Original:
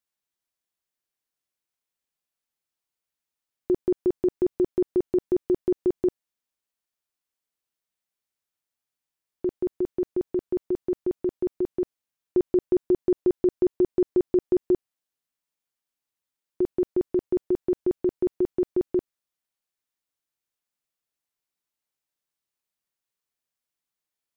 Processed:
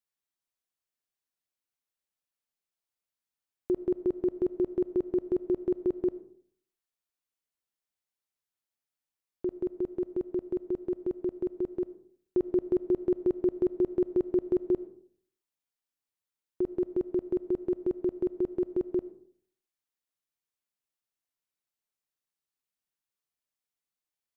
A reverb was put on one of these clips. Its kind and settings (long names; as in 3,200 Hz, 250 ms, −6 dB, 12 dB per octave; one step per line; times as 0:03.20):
comb and all-pass reverb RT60 0.59 s, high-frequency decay 0.4×, pre-delay 35 ms, DRR 15.5 dB
level −5 dB